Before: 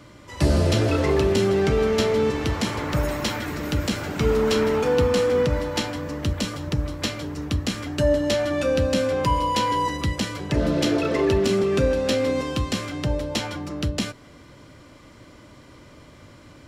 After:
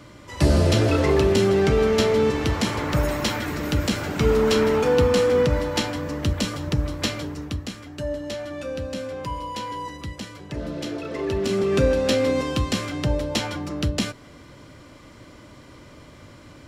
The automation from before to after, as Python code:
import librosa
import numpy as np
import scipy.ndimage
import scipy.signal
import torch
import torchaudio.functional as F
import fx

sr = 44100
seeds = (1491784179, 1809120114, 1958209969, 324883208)

y = fx.gain(x, sr, db=fx.line((7.19, 1.5), (7.8, -9.0), (11.05, -9.0), (11.79, 1.5)))